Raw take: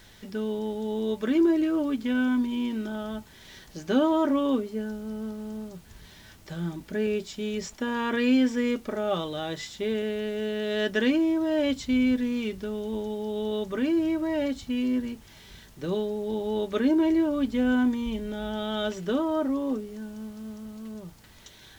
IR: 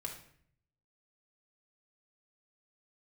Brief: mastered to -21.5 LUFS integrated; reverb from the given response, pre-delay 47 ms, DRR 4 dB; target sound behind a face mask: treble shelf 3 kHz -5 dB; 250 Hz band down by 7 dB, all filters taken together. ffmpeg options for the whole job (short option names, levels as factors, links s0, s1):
-filter_complex "[0:a]equalizer=f=250:t=o:g=-8.5,asplit=2[s0][s1];[1:a]atrim=start_sample=2205,adelay=47[s2];[s1][s2]afir=irnorm=-1:irlink=0,volume=0.708[s3];[s0][s3]amix=inputs=2:normalize=0,highshelf=f=3000:g=-5,volume=2.82"